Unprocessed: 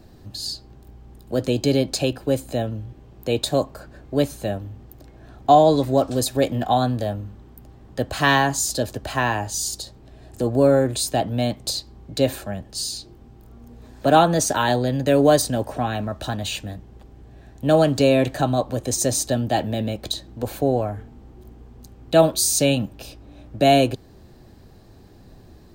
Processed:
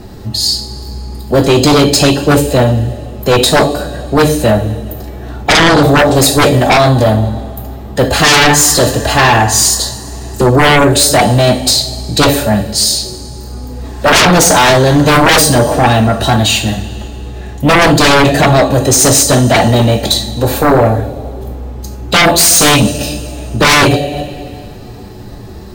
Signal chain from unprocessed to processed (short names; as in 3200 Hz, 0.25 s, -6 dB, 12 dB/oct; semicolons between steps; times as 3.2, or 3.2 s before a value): two-slope reverb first 0.43 s, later 2.3 s, from -18 dB, DRR 2 dB; formant-preserving pitch shift +1 st; sine folder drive 17 dB, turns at 1 dBFS; gain -4.5 dB